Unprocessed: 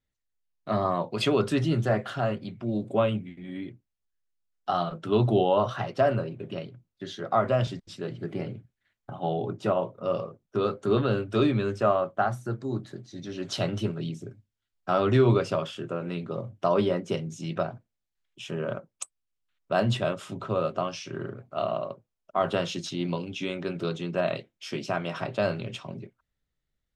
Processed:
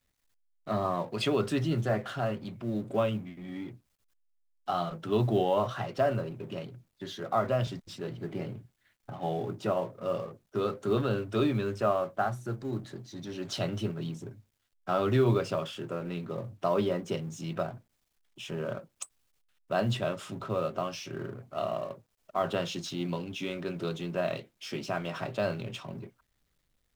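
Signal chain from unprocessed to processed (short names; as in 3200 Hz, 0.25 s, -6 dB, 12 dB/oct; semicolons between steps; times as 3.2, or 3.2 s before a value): G.711 law mismatch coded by mu; gain -4.5 dB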